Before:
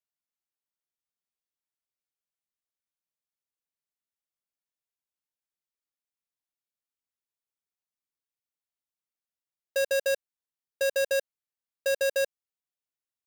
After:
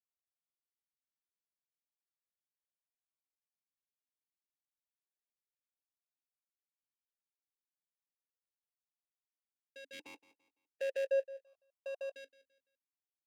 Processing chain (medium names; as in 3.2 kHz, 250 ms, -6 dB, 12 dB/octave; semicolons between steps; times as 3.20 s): 9.92–11.04 s: spectral contrast reduction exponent 0.51; feedback delay 169 ms, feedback 35%, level -17 dB; stepped vowel filter 1.4 Hz; trim -3 dB